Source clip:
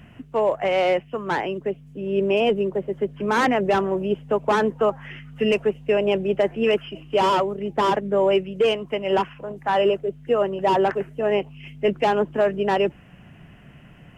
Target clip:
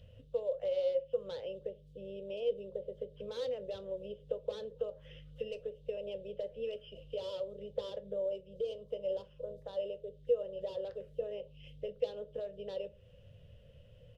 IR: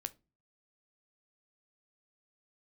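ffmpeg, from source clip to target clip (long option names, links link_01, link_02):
-filter_complex "[0:a]asettb=1/sr,asplit=3[link_01][link_02][link_03];[link_01]atrim=end=8.164[link_04];[link_02]atrim=start=8.16:end=9.8,asetpts=PTS-STARTPTS,afade=type=in:duration=0.004:curve=qsin,afade=type=out:start_time=1.636:duration=0.004:curve=qsin,equalizer=frequency=2200:width_type=o:width=1.1:gain=-8.5[link_05];[link_03]atrim=start=9.796[link_06];[link_04][link_05]acrossfade=duration=0.004:curve1=hsin:curve2=qsin[link_07];[link_07][link_06]acrossfade=duration=0.004:curve1=qsin:curve2=hsin,acompressor=threshold=-27dB:ratio=6,firequalizer=gain_entry='entry(100,0);entry(170,-16);entry(340,-23);entry(510,10);entry(730,-21);entry(2200,-20);entry(3600,4);entry(6800,-10)':delay=0.05:min_phase=1[link_08];[1:a]atrim=start_sample=2205[link_09];[link_08][link_09]afir=irnorm=-1:irlink=0,volume=-2.5dB"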